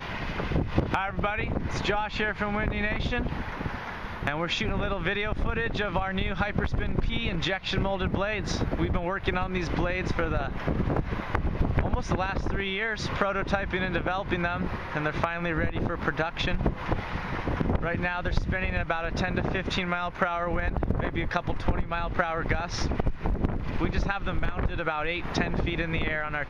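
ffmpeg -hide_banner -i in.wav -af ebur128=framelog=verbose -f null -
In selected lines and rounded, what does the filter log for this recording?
Integrated loudness:
  I:         -29.0 LUFS
  Threshold: -39.0 LUFS
Loudness range:
  LRA:         1.1 LU
  Threshold: -49.0 LUFS
  LRA low:   -29.7 LUFS
  LRA high:  -28.5 LUFS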